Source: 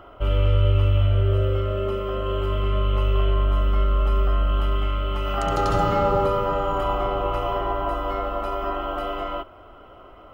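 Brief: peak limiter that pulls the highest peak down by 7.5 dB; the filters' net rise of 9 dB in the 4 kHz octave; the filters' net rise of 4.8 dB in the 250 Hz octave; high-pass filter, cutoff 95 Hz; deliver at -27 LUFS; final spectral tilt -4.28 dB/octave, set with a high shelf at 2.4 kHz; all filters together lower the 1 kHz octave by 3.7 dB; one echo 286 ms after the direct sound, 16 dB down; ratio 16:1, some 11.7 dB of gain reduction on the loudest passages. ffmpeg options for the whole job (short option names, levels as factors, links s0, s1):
-af "highpass=95,equalizer=f=250:t=o:g=7.5,equalizer=f=1000:t=o:g=-7.5,highshelf=f=2400:g=6.5,equalizer=f=4000:t=o:g=8.5,acompressor=threshold=0.0355:ratio=16,alimiter=level_in=1.33:limit=0.0631:level=0:latency=1,volume=0.75,aecho=1:1:286:0.158,volume=2.66"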